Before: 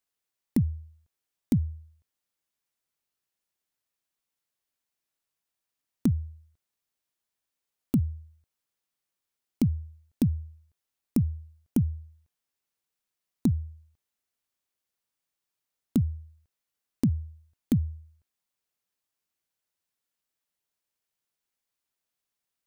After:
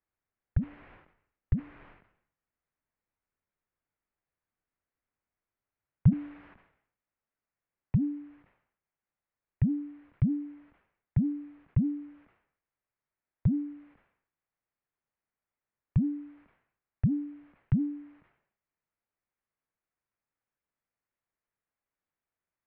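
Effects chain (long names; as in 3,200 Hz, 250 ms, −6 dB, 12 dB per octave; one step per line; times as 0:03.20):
high-pass filter sweep 360 Hz → 71 Hz, 0:05.24–0:07.31
single-sideband voice off tune −370 Hz 210–2,600 Hz
level that may fall only so fast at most 89 dB per second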